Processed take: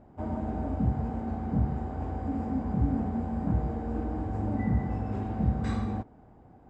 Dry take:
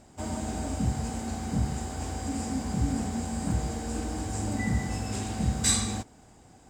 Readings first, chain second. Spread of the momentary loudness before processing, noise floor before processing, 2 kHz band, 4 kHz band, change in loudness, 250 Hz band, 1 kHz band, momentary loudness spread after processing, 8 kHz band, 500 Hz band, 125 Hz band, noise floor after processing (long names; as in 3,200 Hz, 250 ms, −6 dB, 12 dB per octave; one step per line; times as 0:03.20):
8 LU, −55 dBFS, −8.5 dB, below −20 dB, −0.5 dB, +1.0 dB, 0.0 dB, 6 LU, below −30 dB, +1.0 dB, +1.0 dB, −55 dBFS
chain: low-pass filter 1,100 Hz 12 dB per octave
level +1 dB